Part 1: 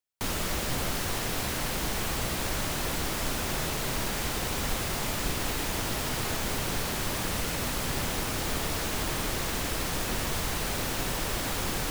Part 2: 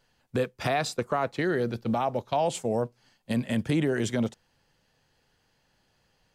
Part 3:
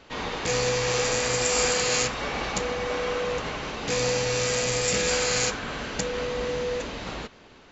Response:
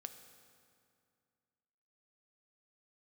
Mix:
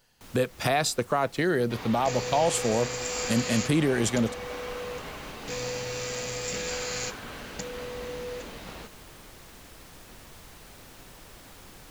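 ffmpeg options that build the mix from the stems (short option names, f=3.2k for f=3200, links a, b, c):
-filter_complex "[0:a]volume=-20dB,asplit=2[a][b];[b]volume=-6.5dB[c];[1:a]highshelf=f=6.5k:g=11.5,volume=1.5dB,asplit=2[d][e];[2:a]adelay=1600,volume=-8dB[f];[e]apad=whole_len=525088[g];[a][g]sidechaincompress=threshold=-32dB:ratio=8:attack=41:release=262[h];[3:a]atrim=start_sample=2205[i];[c][i]afir=irnorm=-1:irlink=0[j];[h][d][f][j]amix=inputs=4:normalize=0"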